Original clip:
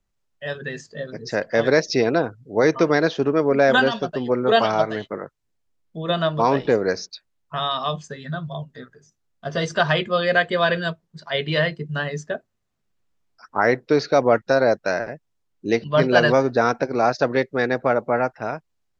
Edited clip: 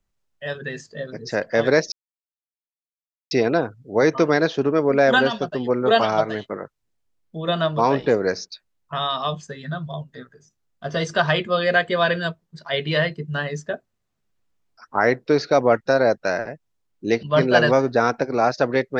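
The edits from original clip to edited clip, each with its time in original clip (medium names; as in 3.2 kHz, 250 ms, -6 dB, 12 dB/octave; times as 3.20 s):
1.92 s: insert silence 1.39 s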